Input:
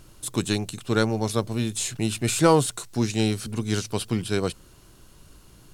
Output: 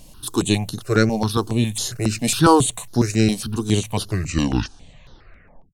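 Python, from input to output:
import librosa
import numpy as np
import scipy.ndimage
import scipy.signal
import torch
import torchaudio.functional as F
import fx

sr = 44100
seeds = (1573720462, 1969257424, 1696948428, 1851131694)

y = fx.tape_stop_end(x, sr, length_s=1.79)
y = fx.phaser_held(y, sr, hz=7.3, low_hz=370.0, high_hz=8000.0)
y = F.gain(torch.from_numpy(y), 7.5).numpy()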